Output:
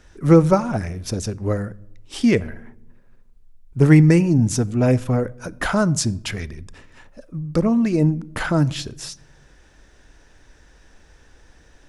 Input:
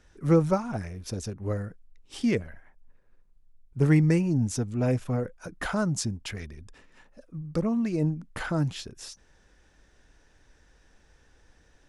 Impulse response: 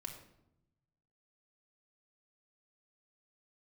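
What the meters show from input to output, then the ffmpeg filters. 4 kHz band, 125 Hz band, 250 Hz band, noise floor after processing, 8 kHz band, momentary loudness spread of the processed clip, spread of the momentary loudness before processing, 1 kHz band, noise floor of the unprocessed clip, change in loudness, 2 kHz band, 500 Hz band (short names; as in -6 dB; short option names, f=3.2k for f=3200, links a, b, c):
+8.5 dB, +8.5 dB, +9.0 dB, -52 dBFS, +8.5 dB, 19 LU, 18 LU, +9.0 dB, -62 dBFS, +8.5 dB, +8.5 dB, +8.5 dB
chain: -filter_complex "[0:a]asplit=2[a][b];[1:a]atrim=start_sample=2205[c];[b][c]afir=irnorm=-1:irlink=0,volume=-11dB[d];[a][d]amix=inputs=2:normalize=0,volume=7.5dB"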